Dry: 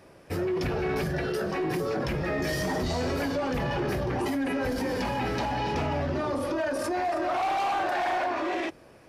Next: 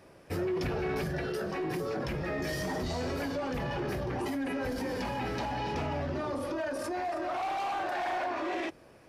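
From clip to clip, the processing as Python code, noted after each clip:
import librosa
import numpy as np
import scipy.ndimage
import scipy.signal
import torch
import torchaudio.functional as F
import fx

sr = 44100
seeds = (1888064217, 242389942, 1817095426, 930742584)

y = fx.rider(x, sr, range_db=4, speed_s=2.0)
y = F.gain(torch.from_numpy(y), -5.0).numpy()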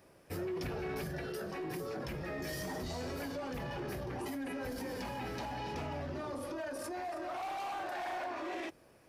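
y = fx.high_shelf(x, sr, hz=9300.0, db=11.0)
y = F.gain(torch.from_numpy(y), -6.5).numpy()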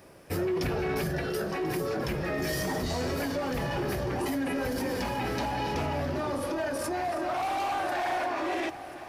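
y = fx.echo_heads(x, sr, ms=346, heads='all three', feedback_pct=64, wet_db=-20)
y = F.gain(torch.from_numpy(y), 9.0).numpy()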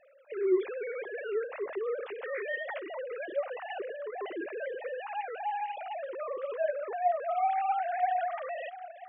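y = fx.sine_speech(x, sr)
y = F.gain(torch.from_numpy(y), -3.0).numpy()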